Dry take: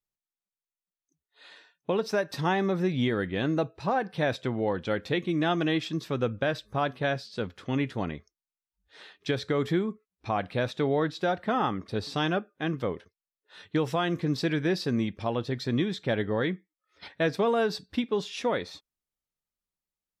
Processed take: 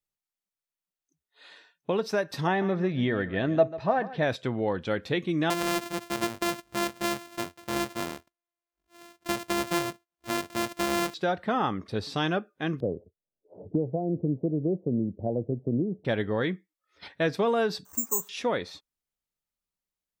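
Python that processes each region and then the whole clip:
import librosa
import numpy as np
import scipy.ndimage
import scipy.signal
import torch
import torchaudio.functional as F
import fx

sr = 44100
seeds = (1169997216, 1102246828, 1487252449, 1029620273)

y = fx.chain(x, sr, fx.air_absorb(metres=150.0),
    fx.small_body(hz=(650.0, 1800.0), ring_ms=90, db=13),
    fx.echo_single(ms=143, db=-15.5), at=(2.47, 4.23))
y = fx.chain(y, sr, fx.sample_sort(block=128),
    fx.low_shelf(hz=190.0, db=-10.0), at=(5.5, 11.14))
y = fx.chain(y, sr, fx.steep_lowpass(hz=670.0, slope=48),
    fx.band_squash(depth_pct=70), at=(12.8, 16.05))
y = fx.chain(y, sr, fx.crossing_spikes(level_db=-24.5),
    fx.ladder_lowpass(hz=1300.0, resonance_pct=55),
    fx.resample_bad(factor=6, down='none', up='zero_stuff'), at=(17.85, 18.29))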